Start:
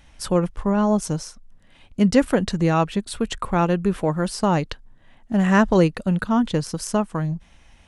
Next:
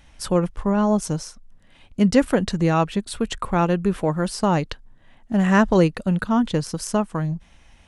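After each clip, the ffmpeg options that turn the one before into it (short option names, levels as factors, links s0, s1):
-af anull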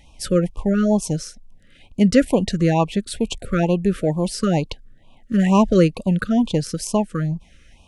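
-af "afftfilt=real='re*(1-between(b*sr/1024,790*pow(1700/790,0.5+0.5*sin(2*PI*2.2*pts/sr))/1.41,790*pow(1700/790,0.5+0.5*sin(2*PI*2.2*pts/sr))*1.41))':imag='im*(1-between(b*sr/1024,790*pow(1700/790,0.5+0.5*sin(2*PI*2.2*pts/sr))/1.41,790*pow(1700/790,0.5+0.5*sin(2*PI*2.2*pts/sr))*1.41))':win_size=1024:overlap=0.75,volume=1.26"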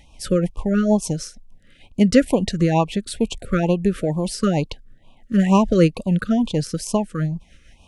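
-af "tremolo=f=6.5:d=0.4,volume=1.19"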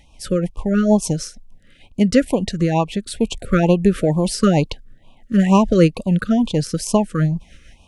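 -af "dynaudnorm=f=510:g=3:m=3.76,volume=0.891"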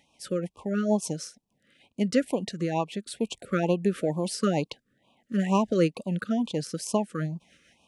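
-af "highpass=190,volume=0.376"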